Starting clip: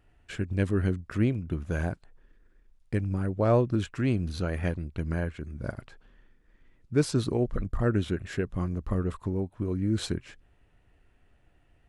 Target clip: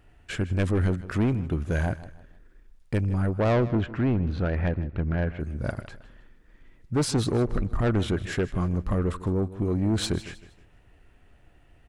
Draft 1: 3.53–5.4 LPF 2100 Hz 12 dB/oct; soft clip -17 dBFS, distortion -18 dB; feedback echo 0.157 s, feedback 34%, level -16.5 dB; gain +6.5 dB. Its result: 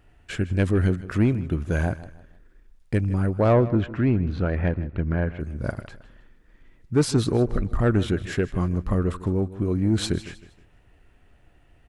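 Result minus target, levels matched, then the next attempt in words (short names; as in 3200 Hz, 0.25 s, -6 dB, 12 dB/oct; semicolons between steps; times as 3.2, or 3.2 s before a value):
soft clip: distortion -9 dB
3.53–5.4 LPF 2100 Hz 12 dB/oct; soft clip -25 dBFS, distortion -10 dB; feedback echo 0.157 s, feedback 34%, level -16.5 dB; gain +6.5 dB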